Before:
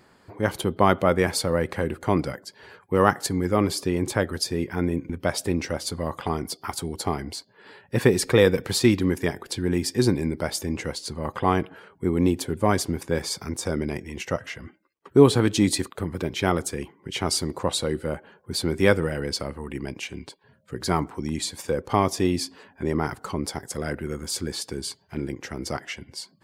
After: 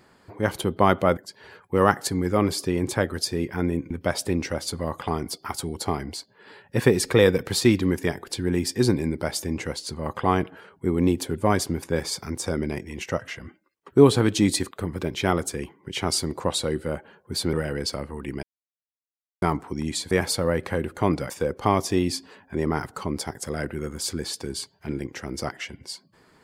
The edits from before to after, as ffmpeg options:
-filter_complex "[0:a]asplit=7[s0][s1][s2][s3][s4][s5][s6];[s0]atrim=end=1.172[s7];[s1]atrim=start=2.358:end=18.722[s8];[s2]atrim=start=18.998:end=19.9,asetpts=PTS-STARTPTS,afade=t=out:st=0.898:d=0.004:c=hsin[s9];[s3]atrim=start=19.9:end=20.89,asetpts=PTS-STARTPTS,volume=0[s10];[s4]atrim=start=20.89:end=21.582,asetpts=PTS-STARTPTS,afade=t=in:d=0.004:c=hsin[s11];[s5]atrim=start=1.168:end=2.362[s12];[s6]atrim=start=21.578[s13];[s7][s8]acrossfade=d=0.004:c1=hsin:c2=hsin[s14];[s9][s10][s11]concat=n=3:v=0:a=1[s15];[s14][s15]acrossfade=d=0.004:c1=hsin:c2=hsin[s16];[s16][s12]acrossfade=d=0.004:c1=hsin:c2=hsin[s17];[s17][s13]acrossfade=d=0.004:c1=hsin:c2=hsin"

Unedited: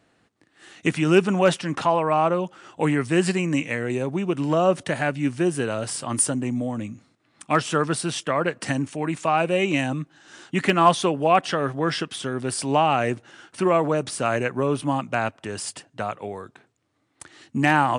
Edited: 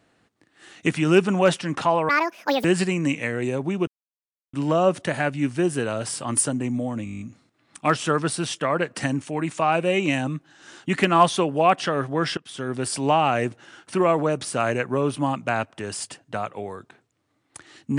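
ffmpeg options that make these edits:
-filter_complex "[0:a]asplit=13[s0][s1][s2][s3][s4][s5][s6][s7][s8][s9][s10][s11][s12];[s0]atrim=end=2.094[s13];[s1]atrim=start=2.09:end=3.12,asetpts=PTS-STARTPTS,asetrate=82026,aresample=44100[s14];[s2]atrim=start=3.116:end=4.35,asetpts=PTS-STARTPTS,afade=t=out:st=1.23:d=0.004:c=hsin,apad=pad_dur=0.66[s15];[s3]atrim=start=4.35:end=6.882,asetpts=PTS-STARTPTS,afade=t=in:d=0.004:c=hsin[s16];[s4]atrim=start=6.858:end=6.882[s17];[s5]atrim=start=6.858:end=6.882[s18];[s6]atrim=start=6.858:end=6.882[s19];[s7]atrim=start=6.858:end=6.882[s20];[s8]atrim=start=6.858:end=6.882[s21];[s9]atrim=start=6.858:end=6.882[s22];[s10]atrim=start=6.858:end=6.882[s23];[s11]atrim=start=6.858:end=12.03,asetpts=PTS-STARTPTS,afade=t=out:st=5.168:d=0.004:c=hsin:silence=0.0794328[s24];[s12]atrim=start=12.03,asetpts=PTS-STARTPTS,afade=t=in:d=0.32:silence=0.0794328[s25];[s13][s14]acrossfade=d=0.004:c1=hsin:c2=hsin[s26];[s15][s16]concat=n=2:v=0:a=1[s27];[s26][s27]acrossfade=d=0.004:c1=hsin:c2=hsin[s28];[s28][s17]acrossfade=d=0.004:c1=hsin:c2=hsin[s29];[s29][s18]acrossfade=d=0.004:c1=hsin:c2=hsin[s30];[s30][s19]acrossfade=d=0.004:c1=hsin:c2=hsin[s31];[s31][s20]acrossfade=d=0.004:c1=hsin:c2=hsin[s32];[s32][s21]acrossfade=d=0.004:c1=hsin:c2=hsin[s33];[s33][s22]acrossfade=d=0.004:c1=hsin:c2=hsin[s34];[s34][s23]acrossfade=d=0.004:c1=hsin:c2=hsin[s35];[s24][s25]concat=n=2:v=0:a=1[s36];[s35][s36]acrossfade=d=0.004:c1=hsin:c2=hsin"

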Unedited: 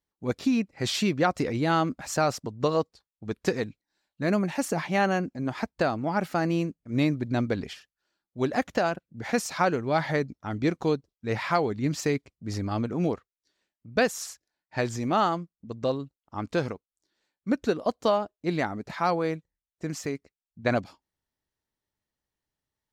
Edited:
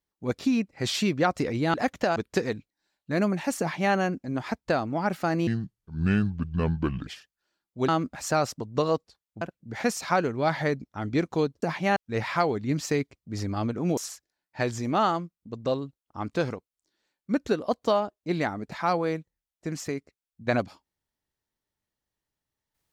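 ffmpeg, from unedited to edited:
-filter_complex "[0:a]asplit=10[s0][s1][s2][s3][s4][s5][s6][s7][s8][s9];[s0]atrim=end=1.742[s10];[s1]atrim=start=8.478:end=8.902[s11];[s2]atrim=start=3.268:end=6.584[s12];[s3]atrim=start=6.58:end=7.67,asetpts=PTS-STARTPTS,asetrate=29988,aresample=44100[s13];[s4]atrim=start=7.666:end=8.482[s14];[s5]atrim=start=1.738:end=3.272[s15];[s6]atrim=start=8.898:end=11.112[s16];[s7]atrim=start=4.708:end=5.052[s17];[s8]atrim=start=11.108:end=13.122[s18];[s9]atrim=start=14.148[s19];[s10][s11]acrossfade=d=0.004:c1=hsin:c2=hsin[s20];[s20][s12]acrossfade=d=0.004:c1=hsin:c2=hsin[s21];[s21][s13]acrossfade=d=0.004:c1=hsin:c2=hsin[s22];[s22][s14]acrossfade=d=0.004:c1=hsin:c2=hsin[s23];[s23][s15]acrossfade=d=0.004:c1=hsin:c2=hsin[s24];[s24][s16]acrossfade=d=0.004:c1=hsin:c2=hsin[s25];[s25][s17]acrossfade=d=0.004:c1=hsin:c2=hsin[s26];[s26][s18]acrossfade=d=0.004:c1=hsin:c2=hsin[s27];[s27][s19]acrossfade=d=0.004:c1=hsin:c2=hsin"

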